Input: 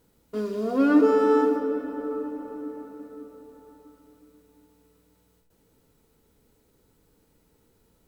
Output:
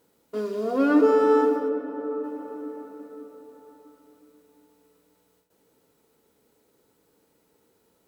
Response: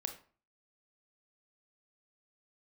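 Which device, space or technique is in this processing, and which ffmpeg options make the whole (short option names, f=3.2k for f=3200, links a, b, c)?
filter by subtraction: -filter_complex "[0:a]asplit=3[a][b][c];[a]afade=t=out:st=1.68:d=0.02[d];[b]highshelf=f=2.9k:g=-10,afade=t=in:st=1.68:d=0.02,afade=t=out:st=2.23:d=0.02[e];[c]afade=t=in:st=2.23:d=0.02[f];[d][e][f]amix=inputs=3:normalize=0,asplit=2[g][h];[h]lowpass=480,volume=-1[i];[g][i]amix=inputs=2:normalize=0"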